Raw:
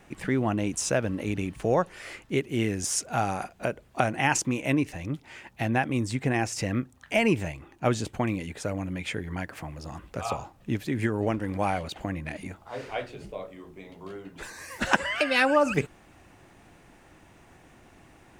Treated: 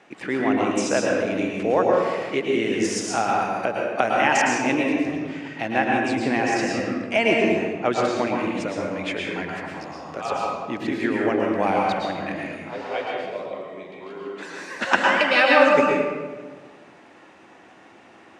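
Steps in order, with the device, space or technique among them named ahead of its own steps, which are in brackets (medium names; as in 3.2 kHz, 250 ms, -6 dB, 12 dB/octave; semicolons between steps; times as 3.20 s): 14.04–14.47 s: high-pass 150 Hz; supermarket ceiling speaker (band-pass 300–5200 Hz; reverberation RT60 1.4 s, pre-delay 103 ms, DRR -2 dB); trim +3.5 dB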